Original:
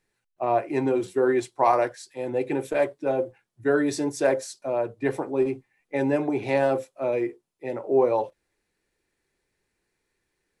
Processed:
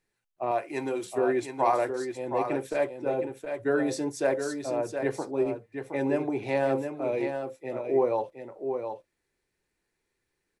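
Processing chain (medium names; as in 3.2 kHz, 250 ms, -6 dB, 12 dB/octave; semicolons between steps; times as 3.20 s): 0.51–1.18 s: tilt EQ +2.5 dB/octave; on a send: delay 718 ms -7 dB; on the sum: trim -4 dB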